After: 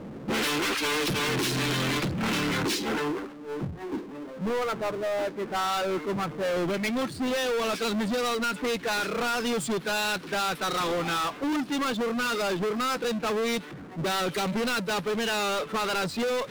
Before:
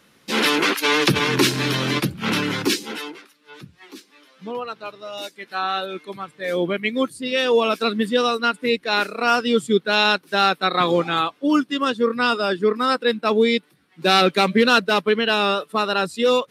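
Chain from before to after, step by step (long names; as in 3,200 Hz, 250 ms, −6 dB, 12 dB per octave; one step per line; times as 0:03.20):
low-pass that shuts in the quiet parts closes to 460 Hz, open at −14.5 dBFS
downward compressor, threshold −28 dBFS, peak gain reduction 16 dB
soft clipping −33.5 dBFS, distortion −8 dB
power curve on the samples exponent 0.5
level +8.5 dB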